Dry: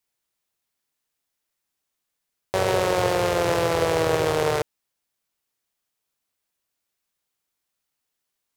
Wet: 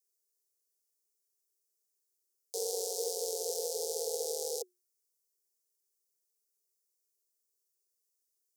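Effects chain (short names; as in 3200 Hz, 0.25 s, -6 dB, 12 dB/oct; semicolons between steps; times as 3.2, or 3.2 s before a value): frequency shift +360 Hz; inverse Chebyshev band-stop 1100–2200 Hz, stop band 70 dB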